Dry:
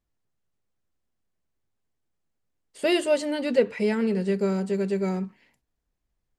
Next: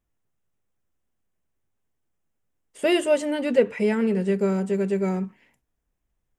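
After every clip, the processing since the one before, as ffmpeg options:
-af "equalizer=f=4.4k:t=o:w=0.4:g=-11,volume=2dB"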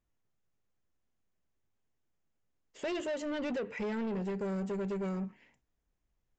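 -af "acompressor=threshold=-23dB:ratio=4,aresample=16000,asoftclip=type=tanh:threshold=-28dB,aresample=44100,volume=-3.5dB"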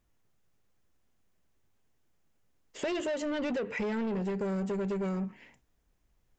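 -af "acompressor=threshold=-41dB:ratio=3,volume=8.5dB"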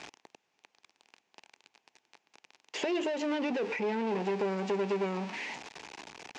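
-filter_complex "[0:a]aeval=exprs='val(0)+0.5*0.0112*sgn(val(0))':c=same,highpass=370,equalizer=f=550:t=q:w=4:g=-5,equalizer=f=860:t=q:w=4:g=6,equalizer=f=1.3k:t=q:w=4:g=-4,equalizer=f=2.5k:t=q:w=4:g=6,lowpass=f=6.2k:w=0.5412,lowpass=f=6.2k:w=1.3066,acrossover=split=490[a][b];[b]acompressor=threshold=-41dB:ratio=10[c];[a][c]amix=inputs=2:normalize=0,volume=6dB"

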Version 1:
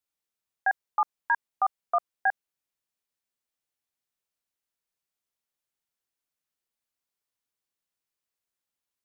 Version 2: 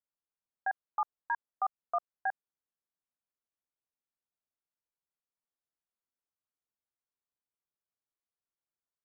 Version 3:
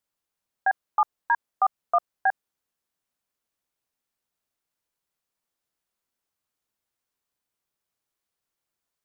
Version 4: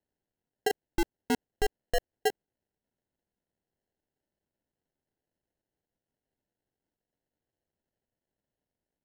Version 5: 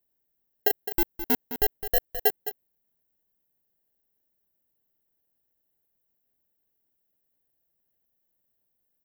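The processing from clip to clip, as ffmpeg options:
-af "lowpass=f=1.6k:w=0.5412,lowpass=f=1.6k:w=1.3066,volume=-6.5dB"
-af "acontrast=82,volume=3dB"
-af "acrusher=samples=37:mix=1:aa=0.000001,volume=-5dB"
-af "aexciter=amount=10.5:drive=5.7:freq=12k,aecho=1:1:211:0.282"

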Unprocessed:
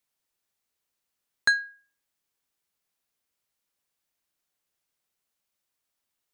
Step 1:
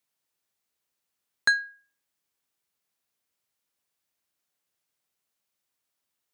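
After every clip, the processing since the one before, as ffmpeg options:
-af "highpass=64"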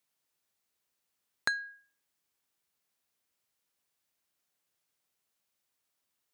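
-af "acompressor=threshold=-28dB:ratio=6"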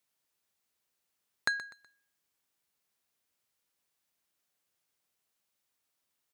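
-af "aecho=1:1:124|248|372:0.178|0.0605|0.0206"

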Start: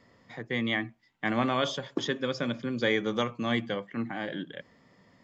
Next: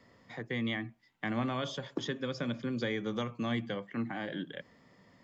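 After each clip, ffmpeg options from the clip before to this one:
-filter_complex "[0:a]acrossover=split=220[a][b];[b]acompressor=threshold=-35dB:ratio=2.5[c];[a][c]amix=inputs=2:normalize=0,volume=-1dB"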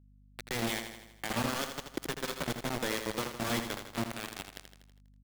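-af "acrusher=bits=4:mix=0:aa=0.000001,aecho=1:1:81|162|243|324|405|486|567:0.398|0.223|0.125|0.0699|0.0392|0.0219|0.0123,aeval=exprs='val(0)+0.00141*(sin(2*PI*50*n/s)+sin(2*PI*2*50*n/s)/2+sin(2*PI*3*50*n/s)/3+sin(2*PI*4*50*n/s)/4+sin(2*PI*5*50*n/s)/5)':c=same,volume=-1.5dB"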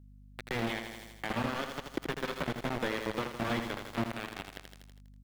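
-filter_complex "[0:a]acrossover=split=3500[a][b];[b]acompressor=threshold=-51dB:ratio=4:attack=1:release=60[c];[a][c]amix=inputs=2:normalize=0,alimiter=level_in=4dB:limit=-24dB:level=0:latency=1:release=312,volume=-4dB,volume=5.5dB"

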